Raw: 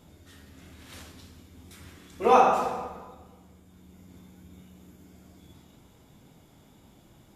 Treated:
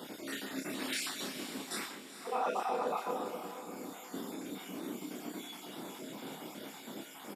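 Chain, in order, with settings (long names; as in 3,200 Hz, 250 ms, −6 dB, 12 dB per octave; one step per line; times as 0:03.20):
time-frequency cells dropped at random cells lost 36%
high-pass filter 230 Hz 24 dB per octave
reversed playback
downward compressor 12 to 1, threshold −47 dBFS, peak gain reduction 32.5 dB
reversed playback
notch filter 6,200 Hz, Q 9.3
double-tracking delay 30 ms −4 dB
on a send: feedback delay with all-pass diffusion 459 ms, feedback 42%, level −10 dB
on the sum: level +14 dB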